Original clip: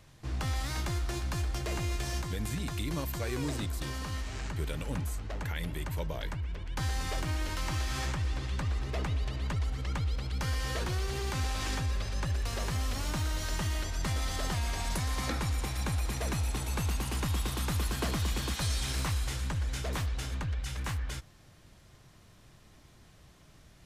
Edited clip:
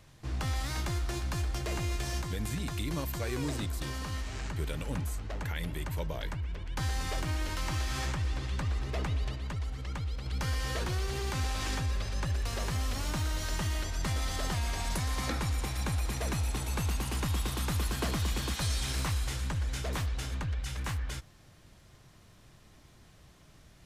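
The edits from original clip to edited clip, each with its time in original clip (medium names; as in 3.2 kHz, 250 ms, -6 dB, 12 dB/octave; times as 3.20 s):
9.35–10.26 s: gain -3.5 dB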